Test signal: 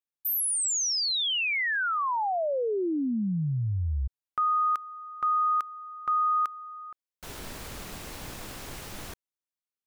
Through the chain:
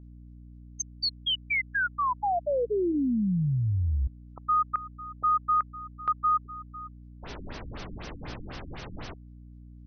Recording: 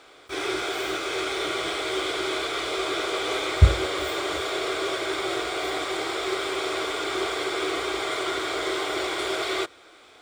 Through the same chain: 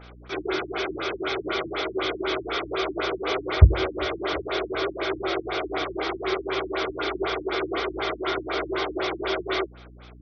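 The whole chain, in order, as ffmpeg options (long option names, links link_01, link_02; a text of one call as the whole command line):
ffmpeg -i in.wav -af "aeval=exprs='val(0)+0.00398*(sin(2*PI*60*n/s)+sin(2*PI*2*60*n/s)/2+sin(2*PI*3*60*n/s)/3+sin(2*PI*4*60*n/s)/4+sin(2*PI*5*60*n/s)/5)':channel_layout=same,afftfilt=real='re*lt(b*sr/1024,310*pow(6500/310,0.5+0.5*sin(2*PI*4*pts/sr)))':imag='im*lt(b*sr/1024,310*pow(6500/310,0.5+0.5*sin(2*PI*4*pts/sr)))':win_size=1024:overlap=0.75,volume=2dB" out.wav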